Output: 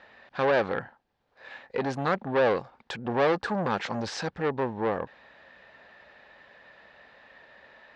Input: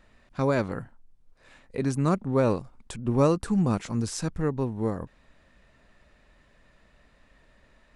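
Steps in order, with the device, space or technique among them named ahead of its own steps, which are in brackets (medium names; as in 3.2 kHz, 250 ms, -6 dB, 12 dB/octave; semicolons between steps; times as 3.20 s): guitar amplifier (valve stage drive 27 dB, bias 0.25; tone controls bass -11 dB, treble +9 dB; cabinet simulation 83–3900 Hz, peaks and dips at 300 Hz -3 dB, 520 Hz +4 dB, 820 Hz +8 dB, 1.7 kHz +7 dB); trim +6.5 dB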